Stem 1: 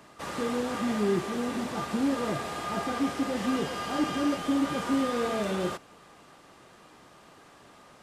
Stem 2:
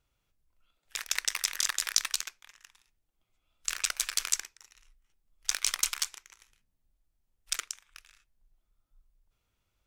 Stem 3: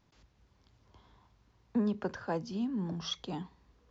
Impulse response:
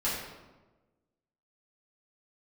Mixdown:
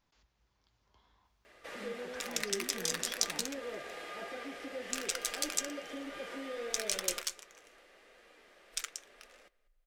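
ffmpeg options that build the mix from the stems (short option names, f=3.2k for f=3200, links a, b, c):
-filter_complex "[0:a]equalizer=f=125:t=o:w=1:g=-11,equalizer=f=500:t=o:w=1:g=10,equalizer=f=1k:t=o:w=1:g=-9,equalizer=f=2k:t=o:w=1:g=8,equalizer=f=8k:t=o:w=1:g=-4,acompressor=threshold=-37dB:ratio=1.5,adelay=1450,volume=-2dB,asplit=2[a][b];[b]volume=-21dB[c];[1:a]adelay=1250,volume=-1dB[d];[2:a]alimiter=level_in=7.5dB:limit=-24dB:level=0:latency=1,volume=-7.5dB,volume=0.5dB[e];[c]aecho=0:1:197|394|591|788:1|0.3|0.09|0.027[f];[a][d][e][f]amix=inputs=4:normalize=0,flanger=delay=3.6:depth=3:regen=-62:speed=0.85:shape=triangular,equalizer=f=160:w=0.37:g=-9.5"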